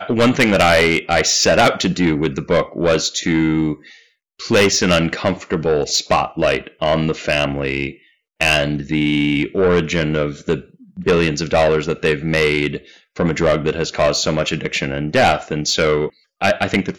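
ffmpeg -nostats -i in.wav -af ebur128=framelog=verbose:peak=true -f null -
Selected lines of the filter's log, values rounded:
Integrated loudness:
  I:         -17.0 LUFS
  Threshold: -27.2 LUFS
Loudness range:
  LRA:         2.9 LU
  Threshold: -37.6 LUFS
  LRA low:   -18.5 LUFS
  LRA high:  -15.6 LUFS
True peak:
  Peak:       -4.9 dBFS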